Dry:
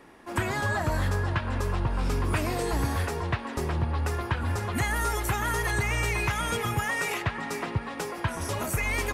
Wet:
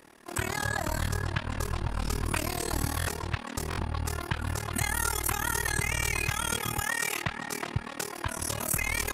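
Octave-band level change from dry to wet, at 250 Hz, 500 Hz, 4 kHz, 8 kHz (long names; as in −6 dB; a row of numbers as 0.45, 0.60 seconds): −4.0, −5.5, +1.5, +5.0 decibels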